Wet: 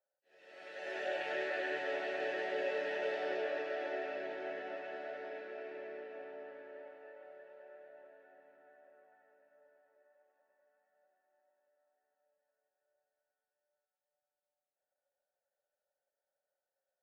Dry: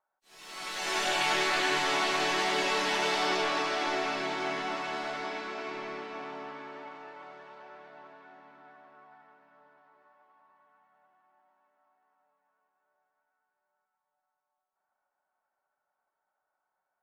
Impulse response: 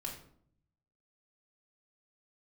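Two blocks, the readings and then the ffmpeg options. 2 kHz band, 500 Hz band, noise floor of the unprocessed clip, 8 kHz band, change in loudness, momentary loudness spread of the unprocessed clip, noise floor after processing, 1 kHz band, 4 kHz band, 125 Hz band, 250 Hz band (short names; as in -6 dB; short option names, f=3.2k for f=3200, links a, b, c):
-10.0 dB, -3.0 dB, -85 dBFS, under -25 dB, -10.0 dB, 19 LU, under -85 dBFS, -14.5 dB, -19.5 dB, under -15 dB, -11.5 dB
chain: -filter_complex "[0:a]asplit=3[a][b][c];[a]bandpass=f=530:t=q:w=8,volume=0dB[d];[b]bandpass=f=1.84k:t=q:w=8,volume=-6dB[e];[c]bandpass=f=2.48k:t=q:w=8,volume=-9dB[f];[d][e][f]amix=inputs=3:normalize=0,highshelf=f=1.7k:t=q:w=1.5:g=-6.5,volume=5.5dB"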